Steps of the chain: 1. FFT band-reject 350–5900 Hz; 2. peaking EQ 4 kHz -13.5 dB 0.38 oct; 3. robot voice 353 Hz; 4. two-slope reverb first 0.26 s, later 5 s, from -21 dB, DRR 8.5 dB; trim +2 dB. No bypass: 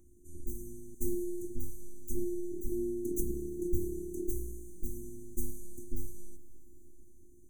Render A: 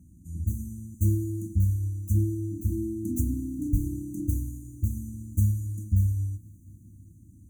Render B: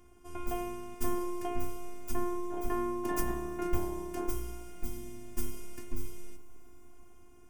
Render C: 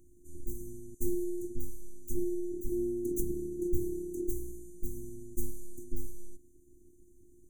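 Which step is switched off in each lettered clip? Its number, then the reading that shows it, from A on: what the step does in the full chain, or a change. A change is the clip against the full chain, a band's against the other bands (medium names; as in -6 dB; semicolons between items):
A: 3, crest factor change -4.5 dB; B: 1, momentary loudness spread change -1 LU; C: 4, 500 Hz band +2.5 dB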